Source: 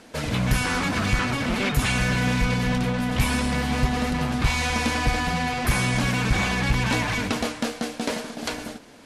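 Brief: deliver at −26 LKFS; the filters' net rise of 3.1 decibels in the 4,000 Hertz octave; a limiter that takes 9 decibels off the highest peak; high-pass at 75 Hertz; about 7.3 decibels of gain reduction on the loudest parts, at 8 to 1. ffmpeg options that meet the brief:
ffmpeg -i in.wav -af "highpass=75,equalizer=frequency=4000:width_type=o:gain=4,acompressor=threshold=-26dB:ratio=8,volume=4.5dB,alimiter=limit=-17dB:level=0:latency=1" out.wav

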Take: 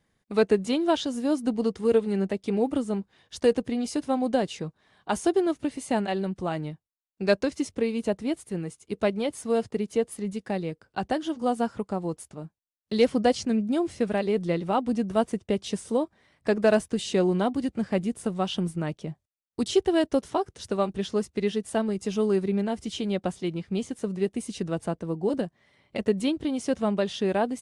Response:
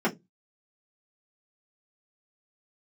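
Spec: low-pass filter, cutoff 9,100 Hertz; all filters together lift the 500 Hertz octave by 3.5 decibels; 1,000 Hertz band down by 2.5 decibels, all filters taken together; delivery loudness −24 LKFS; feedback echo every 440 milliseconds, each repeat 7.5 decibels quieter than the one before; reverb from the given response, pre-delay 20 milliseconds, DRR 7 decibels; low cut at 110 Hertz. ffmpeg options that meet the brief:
-filter_complex "[0:a]highpass=110,lowpass=9100,equalizer=frequency=500:width_type=o:gain=6,equalizer=frequency=1000:width_type=o:gain=-7.5,aecho=1:1:440|880|1320|1760|2200:0.422|0.177|0.0744|0.0312|0.0131,asplit=2[link_01][link_02];[1:a]atrim=start_sample=2205,adelay=20[link_03];[link_02][link_03]afir=irnorm=-1:irlink=0,volume=-19dB[link_04];[link_01][link_04]amix=inputs=2:normalize=0,volume=-2dB"

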